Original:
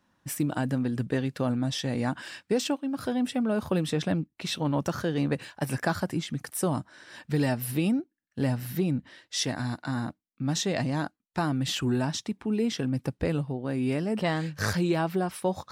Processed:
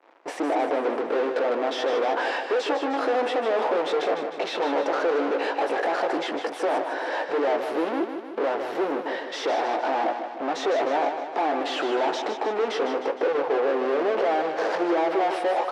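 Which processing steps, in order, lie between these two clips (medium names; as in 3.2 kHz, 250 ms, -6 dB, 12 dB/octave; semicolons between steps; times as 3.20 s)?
high-order bell 620 Hz +12.5 dB 1.3 oct; band-stop 590 Hz, Q 12; doubling 18 ms -9 dB; peak limiter -22.5 dBFS, peak gain reduction 18 dB; waveshaping leveller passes 5; Chebyshev high-pass 320 Hz, order 4; tape spacing loss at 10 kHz 30 dB; on a send: feedback delay 154 ms, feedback 56%, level -8 dB; on the sum: trim +4.5 dB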